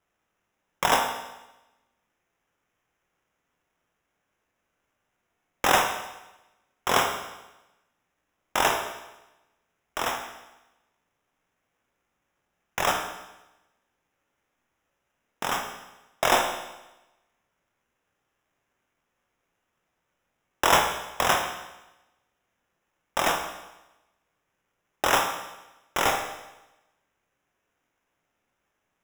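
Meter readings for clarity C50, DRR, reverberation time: 6.5 dB, 3.5 dB, 1.0 s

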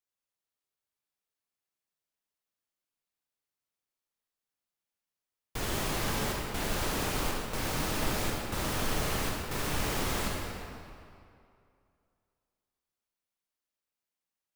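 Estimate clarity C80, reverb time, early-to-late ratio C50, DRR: 1.0 dB, 2.5 s, -0.5 dB, -1.5 dB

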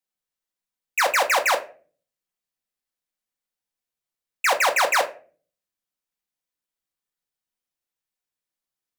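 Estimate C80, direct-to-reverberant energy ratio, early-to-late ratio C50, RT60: 19.0 dB, 3.0 dB, 15.0 dB, not exponential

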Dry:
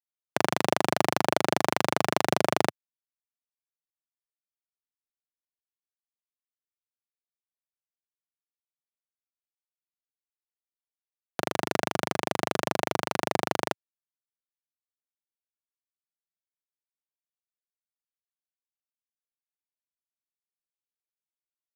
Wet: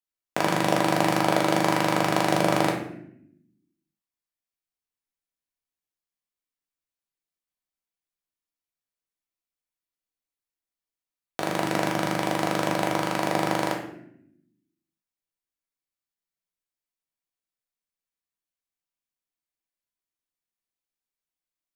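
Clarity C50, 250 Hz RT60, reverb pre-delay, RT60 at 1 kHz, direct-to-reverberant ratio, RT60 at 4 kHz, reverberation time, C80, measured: 5.5 dB, 1.3 s, 3 ms, 0.60 s, -1.0 dB, 0.50 s, 0.75 s, 9.0 dB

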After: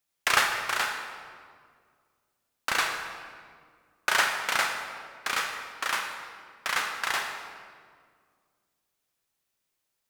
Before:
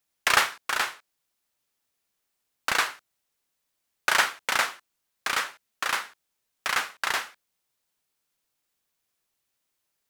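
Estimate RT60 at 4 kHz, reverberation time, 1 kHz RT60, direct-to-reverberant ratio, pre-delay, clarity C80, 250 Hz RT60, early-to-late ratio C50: 1.3 s, 1.9 s, 1.8 s, 3.0 dB, 23 ms, 6.0 dB, 2.4 s, 4.5 dB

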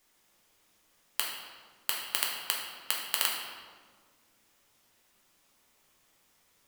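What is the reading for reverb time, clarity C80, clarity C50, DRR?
1.6 s, 4.5 dB, 2.0 dB, -2.5 dB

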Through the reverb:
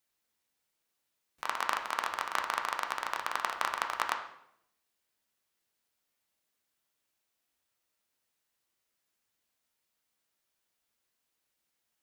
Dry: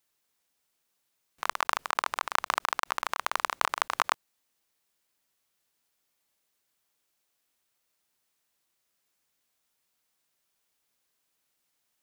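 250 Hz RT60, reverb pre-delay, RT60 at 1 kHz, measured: 0.90 s, 5 ms, 0.70 s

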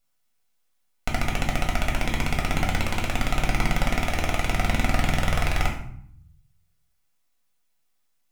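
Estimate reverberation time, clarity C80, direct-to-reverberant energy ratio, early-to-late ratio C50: 0.65 s, 10.5 dB, -1.5 dB, 7.0 dB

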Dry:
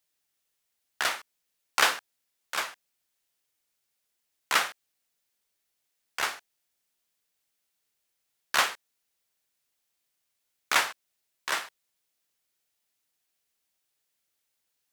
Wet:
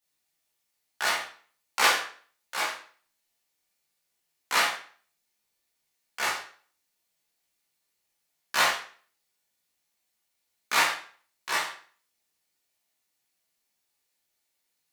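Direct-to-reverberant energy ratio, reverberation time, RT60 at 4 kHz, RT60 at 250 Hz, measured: -7.5 dB, 0.45 s, 0.40 s, 0.50 s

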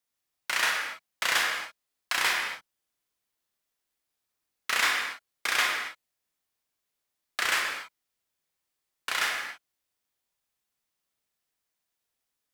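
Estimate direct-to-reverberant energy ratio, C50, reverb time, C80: 0.0 dB, 2.0 dB, not exponential, 4.0 dB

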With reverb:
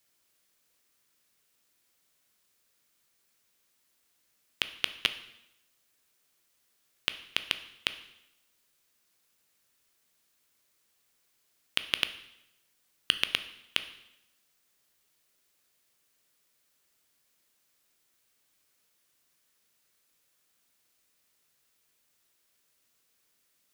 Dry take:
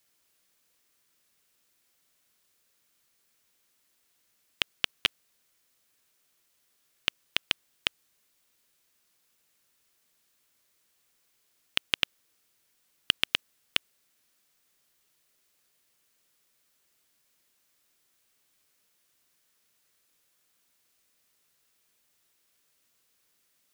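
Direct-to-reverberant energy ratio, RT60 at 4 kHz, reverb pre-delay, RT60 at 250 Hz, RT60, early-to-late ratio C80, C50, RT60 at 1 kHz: 10.0 dB, 0.80 s, 6 ms, 0.85 s, 0.85 s, 15.5 dB, 13.0 dB, 0.85 s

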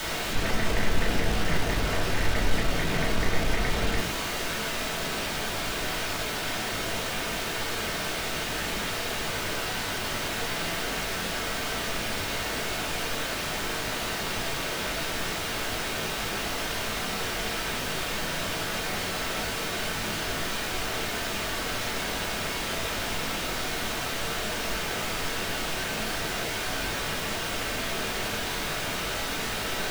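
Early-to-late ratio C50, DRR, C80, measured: 8.0 dB, -5.5 dB, 13.5 dB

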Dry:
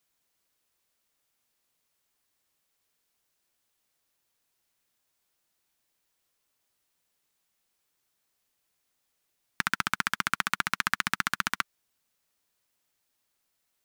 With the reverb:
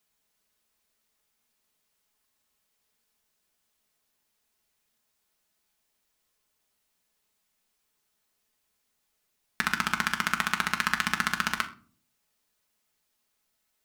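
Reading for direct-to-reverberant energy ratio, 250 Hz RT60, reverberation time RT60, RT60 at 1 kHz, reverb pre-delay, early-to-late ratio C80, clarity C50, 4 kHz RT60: 3.5 dB, 0.75 s, 0.45 s, 0.35 s, 5 ms, 18.5 dB, 14.5 dB, 0.30 s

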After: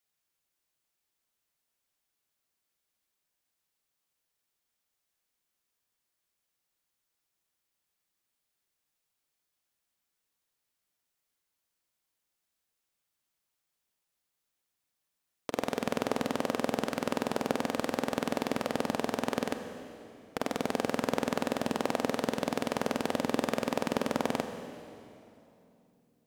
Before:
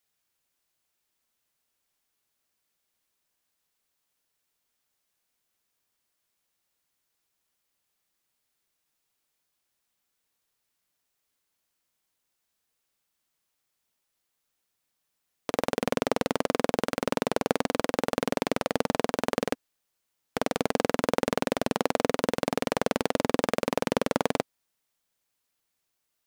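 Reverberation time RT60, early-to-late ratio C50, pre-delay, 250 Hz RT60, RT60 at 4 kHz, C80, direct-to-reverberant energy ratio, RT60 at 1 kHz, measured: 2.8 s, 8.0 dB, 32 ms, 3.5 s, 2.5 s, 9.0 dB, 7.5 dB, 2.7 s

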